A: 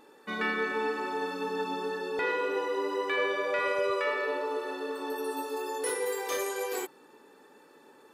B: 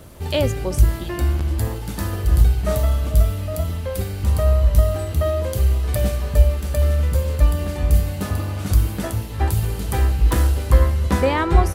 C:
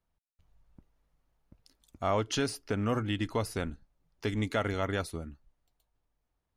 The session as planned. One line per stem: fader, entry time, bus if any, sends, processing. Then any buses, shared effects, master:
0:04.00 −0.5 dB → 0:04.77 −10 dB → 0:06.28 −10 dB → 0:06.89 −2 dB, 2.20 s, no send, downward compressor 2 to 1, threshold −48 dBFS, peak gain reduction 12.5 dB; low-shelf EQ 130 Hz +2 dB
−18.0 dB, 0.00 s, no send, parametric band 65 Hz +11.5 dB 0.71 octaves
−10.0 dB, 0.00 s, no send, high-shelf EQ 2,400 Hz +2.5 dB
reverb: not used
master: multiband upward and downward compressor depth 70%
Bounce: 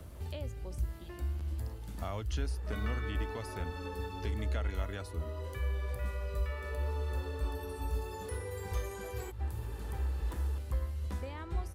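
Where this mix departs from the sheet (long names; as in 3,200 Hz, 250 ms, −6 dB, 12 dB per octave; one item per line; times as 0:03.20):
stem A: entry 2.20 s → 2.45 s
stem B −18.0 dB → −28.0 dB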